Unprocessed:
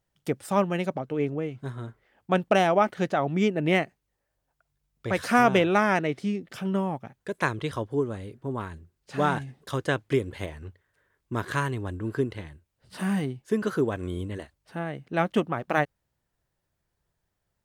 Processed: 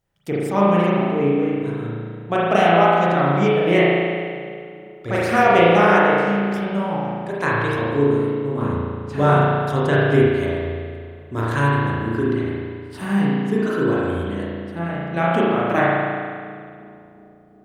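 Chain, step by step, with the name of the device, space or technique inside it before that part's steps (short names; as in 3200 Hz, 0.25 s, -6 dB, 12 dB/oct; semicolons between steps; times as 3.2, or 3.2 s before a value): dub delay into a spring reverb (darkening echo 0.36 s, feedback 71%, low-pass 1300 Hz, level -21.5 dB; spring tank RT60 2 s, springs 35 ms, chirp 50 ms, DRR -7.5 dB); 8.62–10.28 low shelf 480 Hz +5.5 dB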